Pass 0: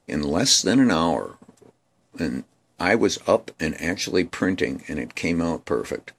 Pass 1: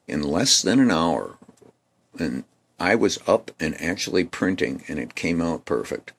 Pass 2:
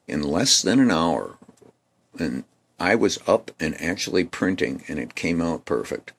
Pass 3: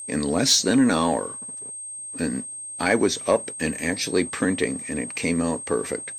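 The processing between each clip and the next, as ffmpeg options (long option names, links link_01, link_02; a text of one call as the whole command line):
ffmpeg -i in.wav -af "highpass=76" out.wav
ffmpeg -i in.wav -af anull out.wav
ffmpeg -i in.wav -af "aeval=exprs='val(0)+0.0224*sin(2*PI*8400*n/s)':channel_layout=same,asoftclip=type=tanh:threshold=-7.5dB" out.wav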